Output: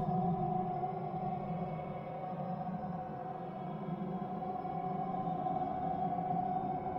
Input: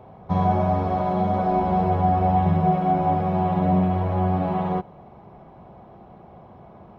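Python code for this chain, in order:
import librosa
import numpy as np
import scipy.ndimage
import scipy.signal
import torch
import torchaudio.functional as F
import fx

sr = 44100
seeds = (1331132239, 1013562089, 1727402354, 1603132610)

y = fx.paulstretch(x, sr, seeds[0], factor=27.0, window_s=0.05, from_s=2.69)
y = fx.comb_fb(y, sr, f0_hz=520.0, decay_s=0.33, harmonics='all', damping=0.0, mix_pct=80)
y = F.gain(torch.from_numpy(y), -4.0).numpy()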